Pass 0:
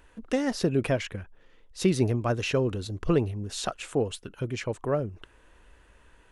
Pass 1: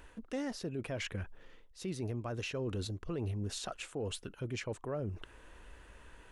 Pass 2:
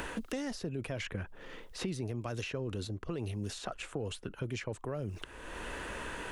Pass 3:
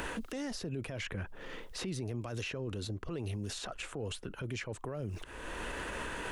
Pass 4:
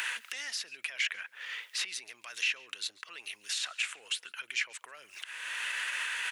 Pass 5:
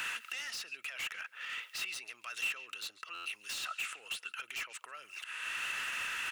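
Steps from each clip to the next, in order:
reverse; compressor 6:1, threshold -36 dBFS, peak gain reduction 18 dB; reverse; limiter -31.5 dBFS, peak gain reduction 7 dB; gain +2 dB
three-band squash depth 100%
limiter -33 dBFS, peak gain reduction 10.5 dB; gain +3 dB
resonant high-pass 2100 Hz, resonance Q 1.6; echo 0.14 s -23.5 dB; gain +7 dB
hard clip -36 dBFS, distortion -6 dB; small resonant body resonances 1300/2700 Hz, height 10 dB, ringing for 20 ms; stuck buffer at 3.14, samples 512, times 9; gain -2 dB

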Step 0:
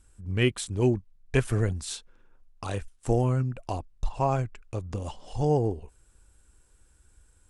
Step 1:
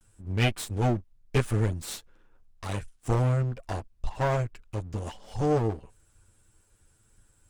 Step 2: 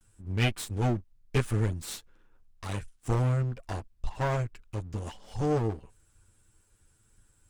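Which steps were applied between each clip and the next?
minimum comb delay 9.2 ms
bell 620 Hz -3 dB 0.92 oct; gain -1.5 dB

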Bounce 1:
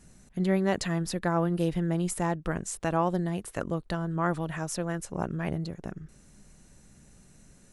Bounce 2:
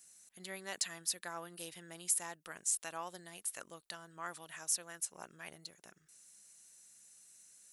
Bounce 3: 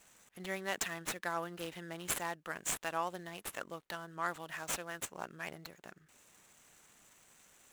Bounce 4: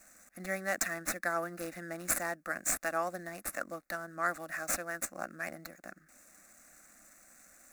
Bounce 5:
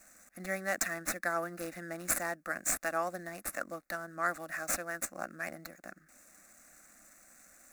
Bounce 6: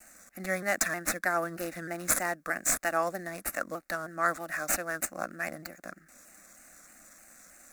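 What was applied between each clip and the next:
differentiator; gain +2.5 dB
median filter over 9 samples; gain +7.5 dB
fixed phaser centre 630 Hz, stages 8; gain +6.5 dB
nothing audible
shaped vibrato saw down 3.2 Hz, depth 100 cents; gain +4.5 dB

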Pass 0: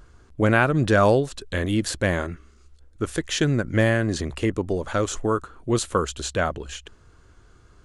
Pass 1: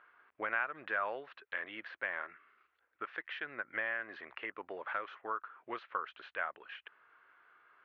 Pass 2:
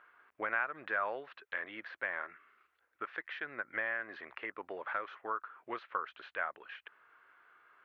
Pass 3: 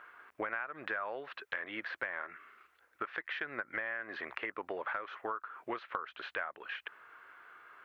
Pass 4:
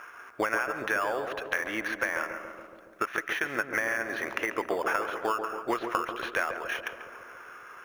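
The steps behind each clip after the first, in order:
HPF 1300 Hz 12 dB/oct; compressor 2:1, threshold -41 dBFS, peak gain reduction 12.5 dB; inverse Chebyshev low-pass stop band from 7100 Hz, stop band 60 dB; gain +2 dB
dynamic EQ 2900 Hz, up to -5 dB, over -56 dBFS, Q 3.2; gain +1 dB
compressor 5:1, threshold -43 dBFS, peak gain reduction 14 dB; gain +8 dB
in parallel at -9.5 dB: sample-and-hold 11×; on the sum: darkening echo 0.14 s, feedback 77%, low-pass 1100 Hz, level -6 dB; reverb RT60 0.40 s, pre-delay 0.12 s, DRR 17 dB; gain +7 dB

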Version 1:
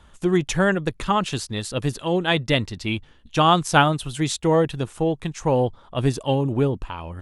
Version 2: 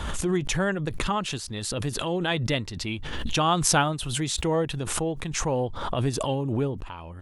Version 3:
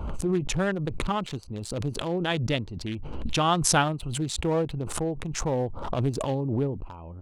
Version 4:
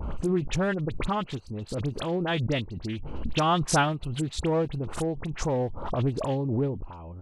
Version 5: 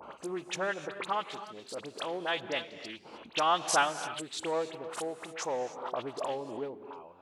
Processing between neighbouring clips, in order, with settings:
backwards sustainer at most 33 dB/s; gain -6.5 dB
Wiener smoothing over 25 samples
high shelf 6200 Hz -11.5 dB; dispersion highs, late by 41 ms, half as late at 2300 Hz
HPF 560 Hz 12 dB/oct; on a send at -11 dB: reverb, pre-delay 3 ms; on the sum: gain -1.5 dB

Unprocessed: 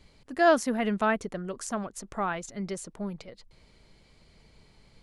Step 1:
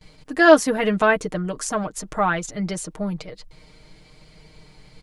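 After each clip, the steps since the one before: gate with hold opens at -49 dBFS; comb 6.5 ms, depth 67%; gain +7.5 dB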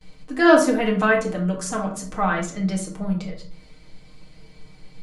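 shoebox room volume 460 m³, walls furnished, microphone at 2 m; gain -4 dB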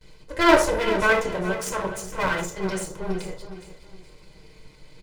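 minimum comb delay 2 ms; on a send: feedback echo 0.418 s, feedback 31%, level -12 dB

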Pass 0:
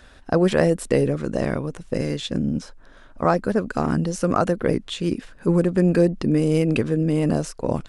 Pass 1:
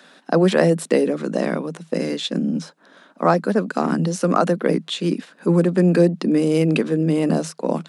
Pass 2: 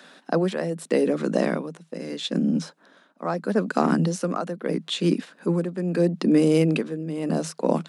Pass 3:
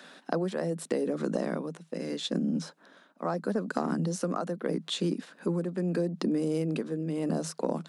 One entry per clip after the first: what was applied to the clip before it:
Chebyshev high-pass 160 Hz, order 8; bell 3900 Hz +4 dB 0.44 oct; gain +3 dB
tremolo 0.78 Hz, depth 75%
dynamic EQ 2500 Hz, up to -6 dB, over -46 dBFS, Q 1.4; compressor 6:1, threshold -24 dBFS, peak gain reduction 10 dB; gain -1.5 dB

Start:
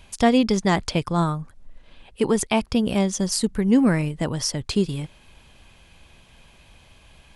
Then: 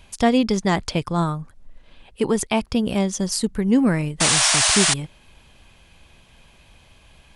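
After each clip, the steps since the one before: painted sound noise, 4.2–4.94, 590–10000 Hz -18 dBFS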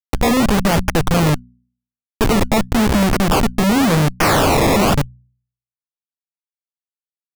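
Schmitt trigger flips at -23.5 dBFS; decimation with a swept rate 20×, swing 100% 0.91 Hz; de-hum 61.34 Hz, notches 4; gain +9 dB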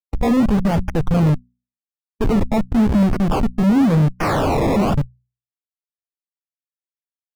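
in parallel at -5 dB: overloaded stage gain 23 dB; on the sum: spectral expander 1.5:1; gain -2.5 dB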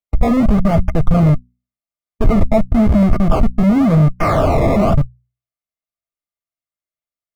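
low shelf 170 Hz +11.5 dB; small resonant body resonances 650/1200/2100 Hz, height 13 dB, ringing for 40 ms; gain -2.5 dB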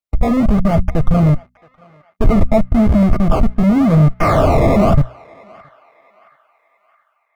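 AGC gain up to 9 dB; narrowing echo 0.671 s, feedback 52%, band-pass 1700 Hz, level -20.5 dB; gain -1 dB

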